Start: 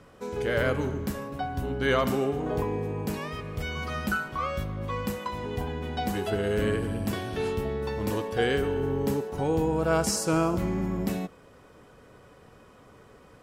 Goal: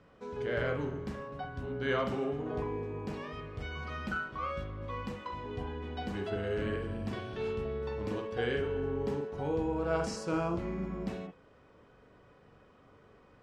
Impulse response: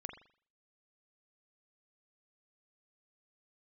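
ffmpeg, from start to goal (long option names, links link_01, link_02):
-filter_complex "[0:a]lowpass=4700[link_01];[1:a]atrim=start_sample=2205,atrim=end_sample=3087[link_02];[link_01][link_02]afir=irnorm=-1:irlink=0,volume=-3.5dB"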